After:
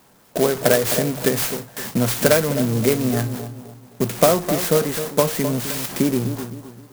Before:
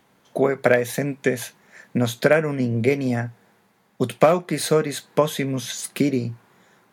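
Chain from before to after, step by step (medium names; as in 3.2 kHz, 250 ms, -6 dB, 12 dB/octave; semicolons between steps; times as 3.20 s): jump at every zero crossing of -27 dBFS; gate with hold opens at -28 dBFS; 0.81–3.14 s: treble shelf 6.4 kHz +11.5 dB; bucket-brigade echo 259 ms, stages 2048, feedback 36%, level -10 dB; sampling jitter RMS 0.092 ms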